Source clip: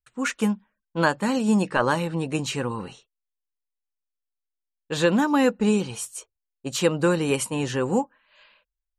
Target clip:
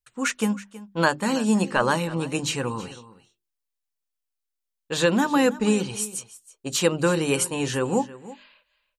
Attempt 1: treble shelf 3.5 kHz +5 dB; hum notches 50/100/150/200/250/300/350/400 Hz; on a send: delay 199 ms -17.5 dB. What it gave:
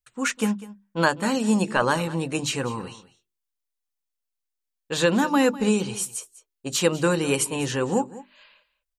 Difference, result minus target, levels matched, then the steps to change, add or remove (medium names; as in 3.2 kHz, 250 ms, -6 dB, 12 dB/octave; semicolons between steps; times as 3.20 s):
echo 124 ms early
change: delay 323 ms -17.5 dB